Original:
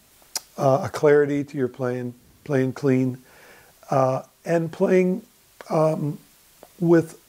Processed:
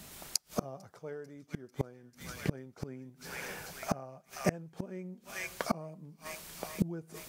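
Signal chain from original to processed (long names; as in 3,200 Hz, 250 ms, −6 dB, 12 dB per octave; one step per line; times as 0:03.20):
parametric band 170 Hz +8.5 dB 0.34 octaves
delay with a high-pass on its return 444 ms, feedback 60%, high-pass 2,600 Hz, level −8 dB
gate with flip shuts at −20 dBFS, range −32 dB
level +5 dB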